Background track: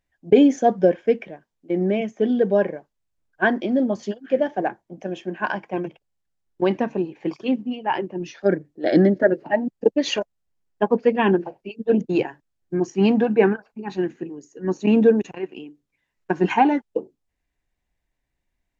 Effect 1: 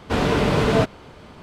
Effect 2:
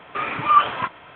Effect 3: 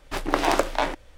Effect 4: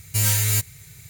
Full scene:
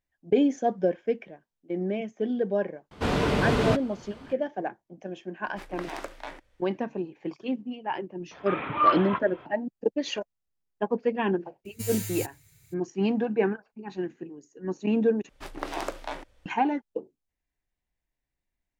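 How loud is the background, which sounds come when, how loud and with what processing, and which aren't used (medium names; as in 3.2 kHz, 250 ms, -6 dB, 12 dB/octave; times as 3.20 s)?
background track -8 dB
2.91 s: add 1 -5 dB
5.45 s: add 3 -16.5 dB + peaking EQ 1.9 kHz +4.5 dB
8.31 s: add 2 -3 dB + peaking EQ 2.4 kHz -6 dB 1.9 oct
11.65 s: add 4 -14.5 dB
15.29 s: replace with 3 -11.5 dB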